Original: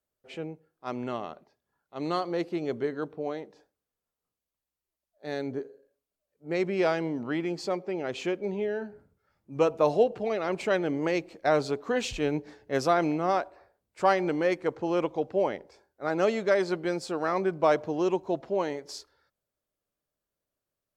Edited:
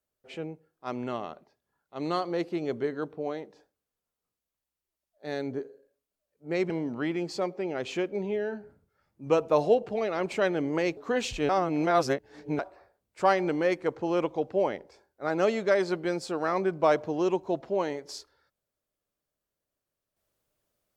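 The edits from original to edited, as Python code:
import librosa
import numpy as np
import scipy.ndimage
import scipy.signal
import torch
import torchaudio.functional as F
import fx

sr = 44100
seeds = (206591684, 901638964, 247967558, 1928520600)

y = fx.edit(x, sr, fx.cut(start_s=6.7, length_s=0.29),
    fx.cut(start_s=11.26, length_s=0.51),
    fx.reverse_span(start_s=12.29, length_s=1.1), tone=tone)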